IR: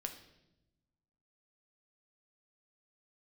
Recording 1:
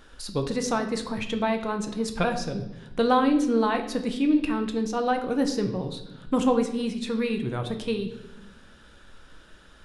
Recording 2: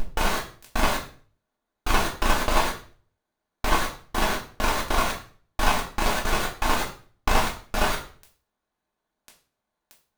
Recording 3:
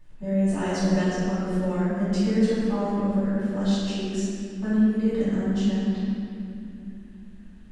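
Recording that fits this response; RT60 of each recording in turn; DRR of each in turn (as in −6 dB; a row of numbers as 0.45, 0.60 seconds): 1; 0.90, 0.40, 2.7 seconds; 4.5, −3.5, −14.5 decibels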